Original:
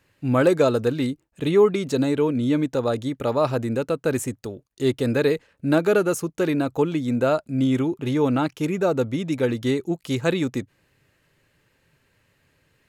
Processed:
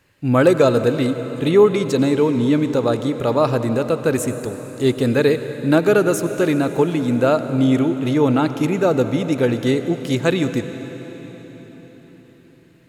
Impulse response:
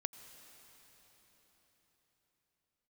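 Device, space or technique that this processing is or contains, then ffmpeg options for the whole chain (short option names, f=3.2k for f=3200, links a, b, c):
cathedral: -filter_complex "[1:a]atrim=start_sample=2205[a];[0:a][a]afir=irnorm=-1:irlink=0,volume=6dB"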